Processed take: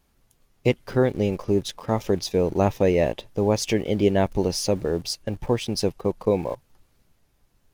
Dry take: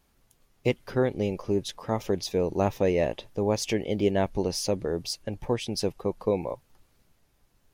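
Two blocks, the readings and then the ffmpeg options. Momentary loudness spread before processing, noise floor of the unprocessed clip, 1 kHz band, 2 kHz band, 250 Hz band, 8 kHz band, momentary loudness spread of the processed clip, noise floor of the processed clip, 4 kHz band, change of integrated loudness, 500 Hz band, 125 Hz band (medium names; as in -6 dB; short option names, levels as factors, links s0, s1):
6 LU, -67 dBFS, +3.5 dB, +3.5 dB, +5.0 dB, +3.5 dB, 6 LU, -66 dBFS, +3.5 dB, +4.5 dB, +4.0 dB, +5.5 dB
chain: -filter_complex "[0:a]lowshelf=f=250:g=2.5,asplit=2[s0][s1];[s1]aeval=exprs='val(0)*gte(abs(val(0)),0.0126)':c=same,volume=0.501[s2];[s0][s2]amix=inputs=2:normalize=0"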